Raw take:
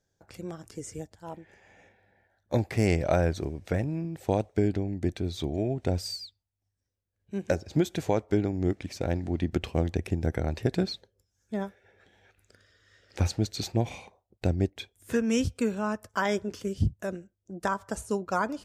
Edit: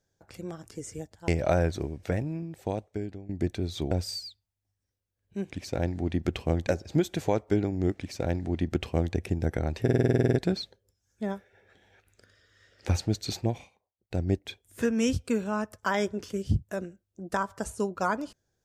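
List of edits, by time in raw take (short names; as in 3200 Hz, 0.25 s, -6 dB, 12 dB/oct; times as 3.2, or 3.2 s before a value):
1.28–2.9 cut
3.64–4.91 fade out, to -15.5 dB
5.53–5.88 cut
8.79–9.95 copy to 7.48
10.64 stutter 0.05 s, 11 plays
13.73–14.59 dip -19.5 dB, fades 0.28 s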